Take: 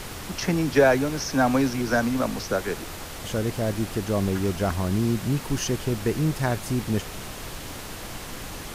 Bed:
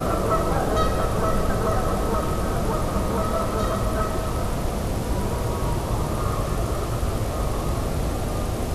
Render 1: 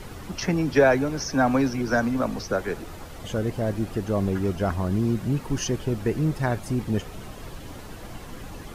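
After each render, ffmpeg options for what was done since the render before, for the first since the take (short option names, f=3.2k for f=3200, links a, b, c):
-af "afftdn=nr=10:nf=-37"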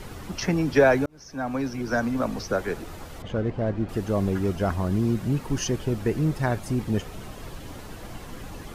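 -filter_complex "[0:a]asettb=1/sr,asplit=3[a][b][c];[a]atrim=end=3.224[d];[b]atrim=start=3.22:end=3.89,asetpts=PTS-STARTPTS,afade=t=in:d=0.004:c=qsin,afade=t=out:st=0.666:d=0.004:c=qsin,adynamicsmooth=sensitivity=2:basefreq=2.6k[e];[c]atrim=start=3.886[f];[d][e]acrossfade=d=0.004:c1=hsin:c2=qsin[g];[g][f]acrossfade=d=0.004:c1=qsin:c2=hsin,asplit=2[h][i];[h]atrim=end=1.06,asetpts=PTS-STARTPTS,afade=t=out:st=1.056:d=0.004:c=hsin[j];[i]atrim=start=1.06,asetpts=PTS-STARTPTS,afade=t=in:d=1.63:c=qsin[k];[j][k]concat=n=2:v=0:a=1"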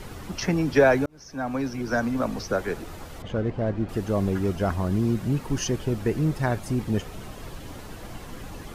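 -af anull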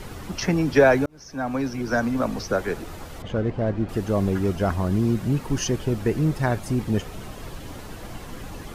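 -af "volume=2dB"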